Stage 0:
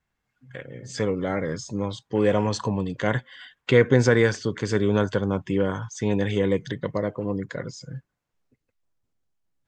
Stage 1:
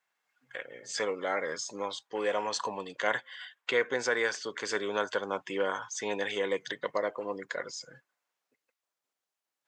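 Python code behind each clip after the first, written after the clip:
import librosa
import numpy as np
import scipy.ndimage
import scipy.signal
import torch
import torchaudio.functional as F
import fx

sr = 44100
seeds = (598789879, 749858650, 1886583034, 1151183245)

y = scipy.signal.sosfilt(scipy.signal.butter(2, 650.0, 'highpass', fs=sr, output='sos'), x)
y = fx.rider(y, sr, range_db=3, speed_s=0.5)
y = y * librosa.db_to_amplitude(-1.5)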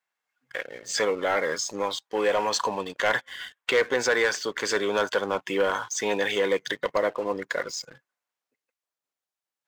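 y = fx.leveller(x, sr, passes=2)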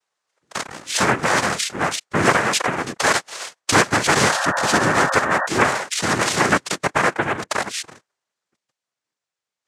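y = fx.noise_vocoder(x, sr, seeds[0], bands=3)
y = fx.spec_paint(y, sr, seeds[1], shape='noise', start_s=4.3, length_s=1.17, low_hz=510.0, high_hz=1900.0, level_db=-29.0)
y = y * librosa.db_to_amplitude(6.5)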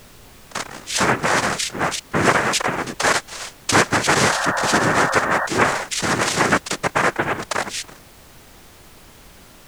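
y = fx.dmg_noise_colour(x, sr, seeds[2], colour='pink', level_db=-45.0)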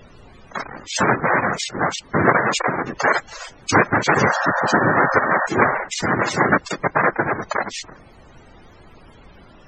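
y = fx.spec_topn(x, sr, count=64)
y = y * librosa.db_to_amplitude(1.5)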